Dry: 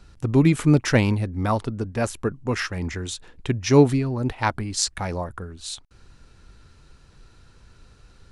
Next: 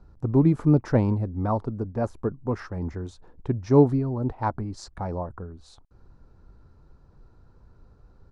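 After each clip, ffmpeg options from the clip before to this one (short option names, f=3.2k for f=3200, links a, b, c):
-af "firequalizer=gain_entry='entry(910,0);entry(1900,-15);entry(2900,-22);entry(4600,-16);entry(9000,-24)':delay=0.05:min_phase=1,volume=-2dB"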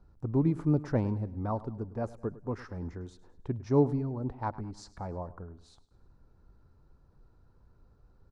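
-af "aecho=1:1:104|208|312|416:0.126|0.0567|0.0255|0.0115,volume=-7.5dB"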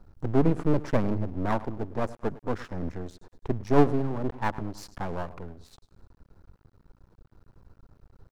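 -af "aeval=exprs='max(val(0),0)':c=same,volume=9dB"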